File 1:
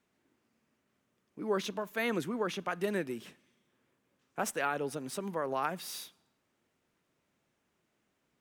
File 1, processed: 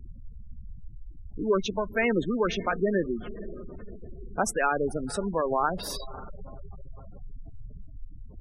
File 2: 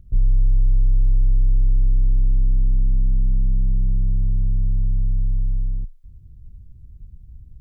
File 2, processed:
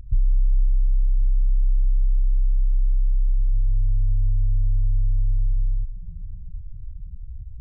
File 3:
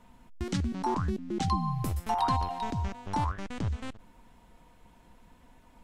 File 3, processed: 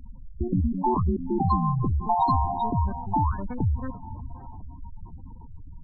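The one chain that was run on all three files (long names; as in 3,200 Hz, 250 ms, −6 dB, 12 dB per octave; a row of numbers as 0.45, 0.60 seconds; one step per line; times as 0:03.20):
feedback delay with all-pass diffusion 537 ms, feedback 57%, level −15 dB
downward compressor 2.5 to 1, threshold −24 dBFS
background noise brown −47 dBFS
gate on every frequency bin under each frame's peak −15 dB strong
normalise the peak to −12 dBFS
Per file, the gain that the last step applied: +8.0, +5.0, +7.0 decibels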